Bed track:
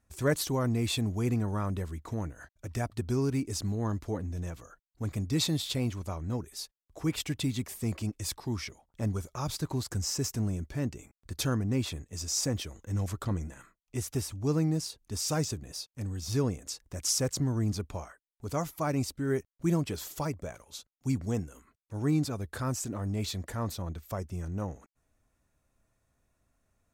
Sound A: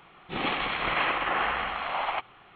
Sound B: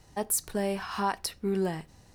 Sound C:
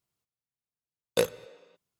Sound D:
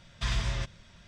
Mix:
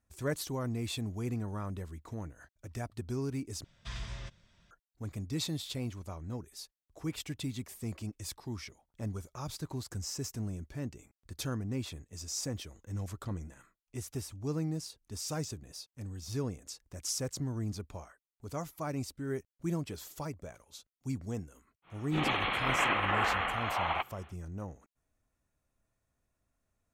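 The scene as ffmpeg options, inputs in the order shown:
-filter_complex "[0:a]volume=-6.5dB,asplit=2[a][b];[a]atrim=end=3.644[c];[4:a]atrim=end=1.07,asetpts=PTS-STARTPTS,volume=-11dB[d];[b]atrim=start=4.706[e];[1:a]atrim=end=2.55,asetpts=PTS-STARTPTS,volume=-2.5dB,afade=t=in:d=0.1,afade=t=out:st=2.45:d=0.1,adelay=21820[f];[c][d]acrossfade=d=0.004:c1=hsin:c2=hsin[g];[g][e]acrossfade=d=0.004:c1=hsin:c2=hsin[h];[h][f]amix=inputs=2:normalize=0"

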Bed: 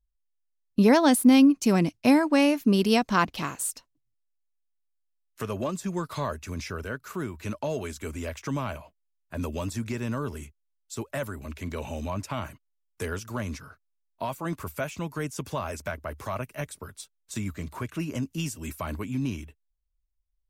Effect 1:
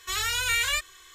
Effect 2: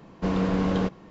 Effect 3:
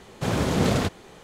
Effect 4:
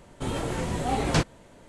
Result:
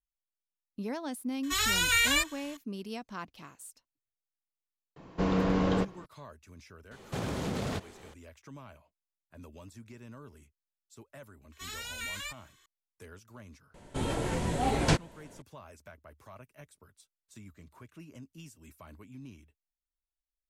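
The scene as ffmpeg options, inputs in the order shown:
-filter_complex "[1:a]asplit=2[a][b];[0:a]volume=-18dB[c];[2:a]bandreject=f=210:w=5.4[d];[3:a]acompressor=threshold=-24dB:ratio=6:attack=3.2:release=140:knee=1:detection=peak[e];[4:a]bandreject=f=1.2k:w=13[f];[a]atrim=end=1.14,asetpts=PTS-STARTPTS,afade=t=in:d=0.004:c=hsin,afade=t=out:st=1.136:d=0.004:c=hsin,adelay=1430[g];[d]atrim=end=1.1,asetpts=PTS-STARTPTS,volume=-1.5dB,afade=t=in:d=0.004:c=hsin,afade=t=out:st=1.096:d=0.004:c=hsin,adelay=4960[h];[e]atrim=end=1.23,asetpts=PTS-STARTPTS,volume=-5.5dB,afade=t=in:d=0.004:c=hsin,afade=t=out:st=1.226:d=0.004:c=hsin,adelay=6910[i];[b]atrim=end=1.14,asetpts=PTS-STARTPTS,volume=-13.5dB,afade=t=in:d=0.004:c=hsin,afade=t=out:st=1.136:d=0.004:c=hsin,adelay=11520[j];[f]atrim=end=1.68,asetpts=PTS-STARTPTS,volume=-2dB,afade=t=in:d=0.004:c=hsin,afade=t=out:st=1.676:d=0.004:c=hsin,adelay=13740[k];[c][g][h][i][j][k]amix=inputs=6:normalize=0"

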